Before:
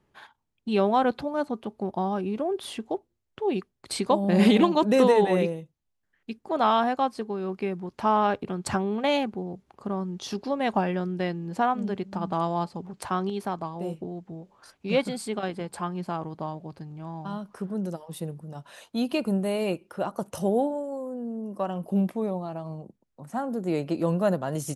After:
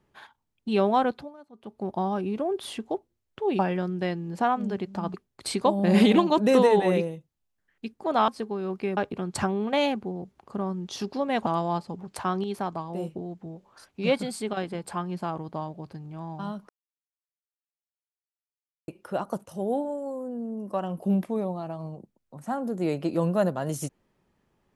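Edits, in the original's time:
0.98–1.91 s: dip -22 dB, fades 0.39 s
6.73–7.07 s: delete
7.76–8.28 s: delete
10.77–12.32 s: move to 3.59 s
17.55–19.74 s: mute
20.32–20.96 s: fade in equal-power, from -13.5 dB

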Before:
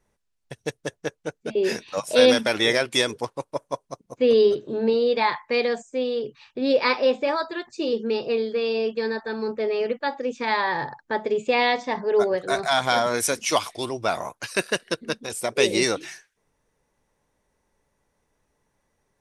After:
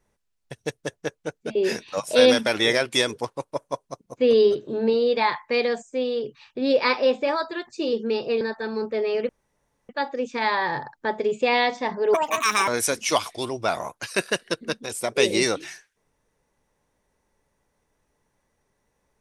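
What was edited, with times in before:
8.41–9.07 s: delete
9.95 s: insert room tone 0.60 s
12.20–13.08 s: speed 164%

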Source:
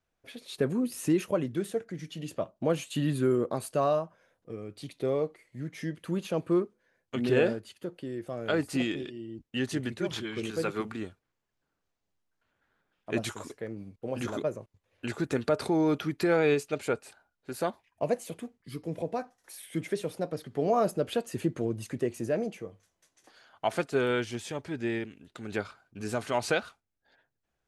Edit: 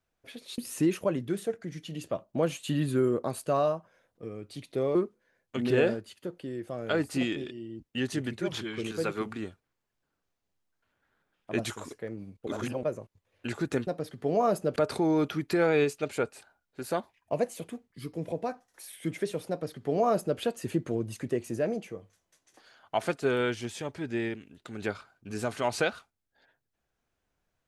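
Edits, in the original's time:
0.58–0.85 s: delete
5.22–6.54 s: delete
14.06–14.42 s: reverse
20.20–21.09 s: copy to 15.46 s

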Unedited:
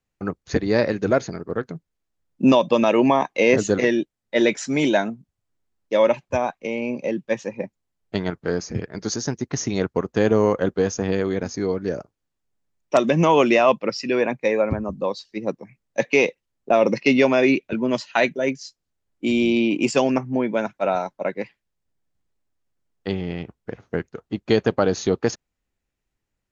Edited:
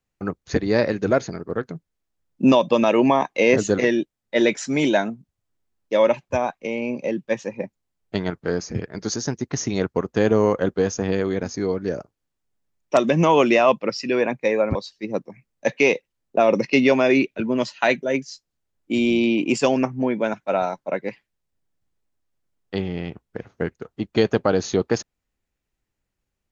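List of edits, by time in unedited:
14.75–15.08 s: delete

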